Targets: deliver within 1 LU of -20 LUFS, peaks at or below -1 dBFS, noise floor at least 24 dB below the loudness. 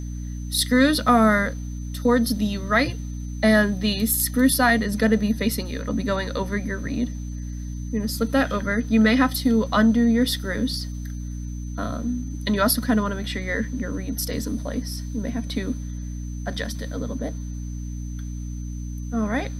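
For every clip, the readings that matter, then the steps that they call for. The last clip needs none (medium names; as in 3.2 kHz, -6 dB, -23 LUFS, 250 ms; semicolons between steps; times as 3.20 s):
hum 60 Hz; highest harmonic 300 Hz; hum level -28 dBFS; steady tone 6.1 kHz; tone level -48 dBFS; loudness -23.5 LUFS; peak level -5.5 dBFS; loudness target -20.0 LUFS
-> de-hum 60 Hz, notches 5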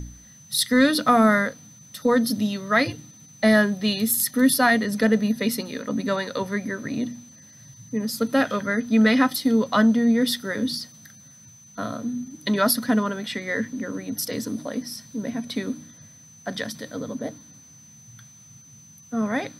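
hum not found; steady tone 6.1 kHz; tone level -48 dBFS
-> band-stop 6.1 kHz, Q 30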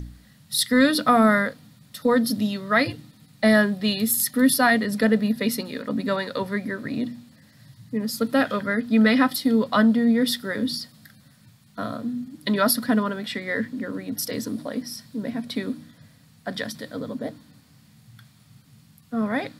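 steady tone not found; loudness -23.0 LUFS; peak level -6.0 dBFS; loudness target -20.0 LUFS
-> trim +3 dB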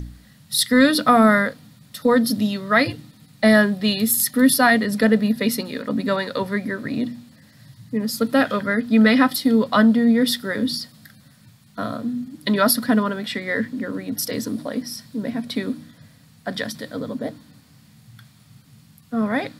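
loudness -20.0 LUFS; peak level -3.0 dBFS; noise floor -52 dBFS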